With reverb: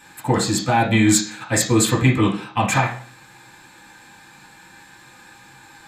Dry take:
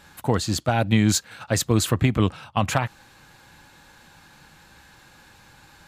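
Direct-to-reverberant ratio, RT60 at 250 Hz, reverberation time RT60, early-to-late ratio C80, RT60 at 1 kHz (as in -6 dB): -4.5 dB, 0.45 s, 0.50 s, 13.0 dB, 0.50 s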